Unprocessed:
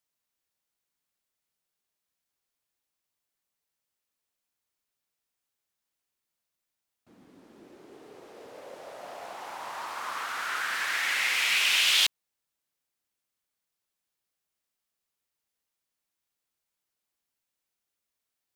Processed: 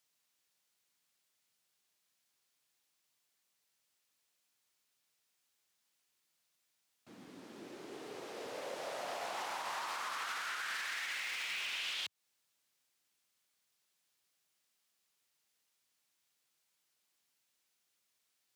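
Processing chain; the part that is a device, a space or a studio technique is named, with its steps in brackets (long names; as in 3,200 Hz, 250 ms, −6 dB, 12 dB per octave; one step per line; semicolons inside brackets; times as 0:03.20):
broadcast voice chain (high-pass filter 93 Hz 24 dB per octave; de-essing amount 75%; downward compressor 4 to 1, threshold −40 dBFS, peak gain reduction 11 dB; parametric band 4,500 Hz +6 dB 3 octaves; brickwall limiter −32.5 dBFS, peak gain reduction 7.5 dB)
level +1.5 dB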